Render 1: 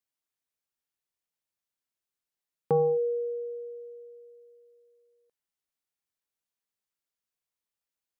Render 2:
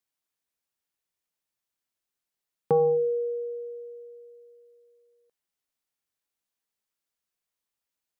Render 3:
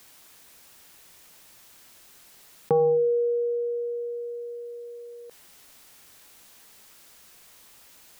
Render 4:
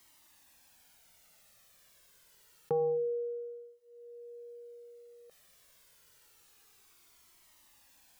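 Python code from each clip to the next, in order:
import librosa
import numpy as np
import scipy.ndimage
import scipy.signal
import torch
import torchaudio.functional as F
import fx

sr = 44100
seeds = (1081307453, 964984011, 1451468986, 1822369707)

y1 = fx.hum_notches(x, sr, base_hz=50, count=3)
y1 = y1 * 10.0 ** (2.5 / 20.0)
y2 = fx.env_flatten(y1, sr, amount_pct=50)
y3 = fx.comb_cascade(y2, sr, direction='falling', hz=0.27)
y3 = y3 * 10.0 ** (-6.0 / 20.0)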